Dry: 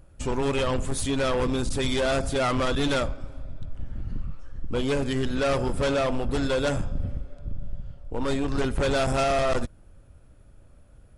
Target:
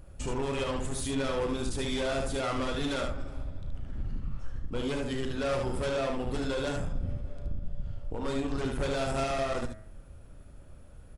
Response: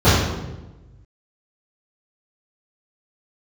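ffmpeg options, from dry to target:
-filter_complex "[0:a]bandreject=f=107.3:t=h:w=4,bandreject=f=214.6:t=h:w=4,bandreject=f=321.9:t=h:w=4,bandreject=f=429.2:t=h:w=4,bandreject=f=536.5:t=h:w=4,bandreject=f=643.8:t=h:w=4,bandreject=f=751.1:t=h:w=4,bandreject=f=858.4:t=h:w=4,bandreject=f=965.7:t=h:w=4,bandreject=f=1.073k:t=h:w=4,bandreject=f=1.1803k:t=h:w=4,bandreject=f=1.2876k:t=h:w=4,bandreject=f=1.3949k:t=h:w=4,bandreject=f=1.5022k:t=h:w=4,bandreject=f=1.6095k:t=h:w=4,bandreject=f=1.7168k:t=h:w=4,bandreject=f=1.8241k:t=h:w=4,bandreject=f=1.9314k:t=h:w=4,bandreject=f=2.0387k:t=h:w=4,bandreject=f=2.146k:t=h:w=4,bandreject=f=2.2533k:t=h:w=4,bandreject=f=2.3606k:t=h:w=4,bandreject=f=2.4679k:t=h:w=4,bandreject=f=2.5752k:t=h:w=4,alimiter=level_in=4.5dB:limit=-24dB:level=0:latency=1:release=74,volume=-4.5dB,asplit=2[a][b];[b]aecho=0:1:34|74:0.316|0.596[c];[a][c]amix=inputs=2:normalize=0,volume=1.5dB"

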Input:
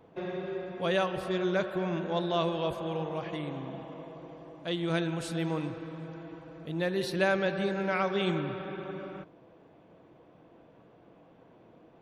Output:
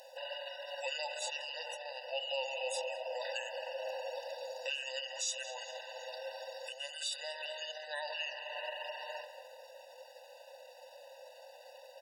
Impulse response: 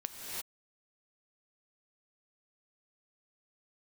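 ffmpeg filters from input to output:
-filter_complex "[0:a]highshelf=f=3.7k:t=q:w=1.5:g=14,asplit=2[a][b];[b]adelay=216,lowpass=f=3k:p=1,volume=-13dB,asplit=2[c][d];[d]adelay=216,lowpass=f=3k:p=1,volume=0.51,asplit=2[e][f];[f]adelay=216,lowpass=f=3k:p=1,volume=0.51,asplit=2[g][h];[h]adelay=216,lowpass=f=3k:p=1,volume=0.51,asplit=2[i][j];[j]adelay=216,lowpass=f=3k:p=1,volume=0.51[k];[c][e][g][i][k]amix=inputs=5:normalize=0[l];[a][l]amix=inputs=2:normalize=0,asetrate=35002,aresample=44100,atempo=1.25992,acompressor=threshold=-38dB:ratio=3,alimiter=level_in=12.5dB:limit=-24dB:level=0:latency=1:release=28,volume=-12.5dB,equalizer=f=750:t=o:w=0.73:g=-6,afftfilt=real='re*eq(mod(floor(b*sr/1024/500),2),1)':imag='im*eq(mod(floor(b*sr/1024/500),2),1)':win_size=1024:overlap=0.75,volume=14dB"

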